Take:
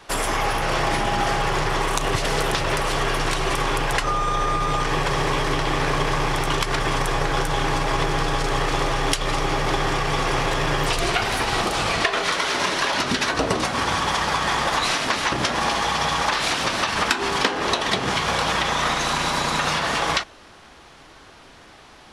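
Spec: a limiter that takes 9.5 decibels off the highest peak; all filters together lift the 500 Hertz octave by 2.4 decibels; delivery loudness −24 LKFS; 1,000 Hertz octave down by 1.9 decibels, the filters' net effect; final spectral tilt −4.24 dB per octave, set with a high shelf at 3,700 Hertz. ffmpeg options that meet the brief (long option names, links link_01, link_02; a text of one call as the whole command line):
ffmpeg -i in.wav -af "equalizer=frequency=500:width_type=o:gain=4,equalizer=frequency=1000:width_type=o:gain=-3,highshelf=frequency=3700:gain=-6.5,volume=1.5dB,alimiter=limit=-14dB:level=0:latency=1" out.wav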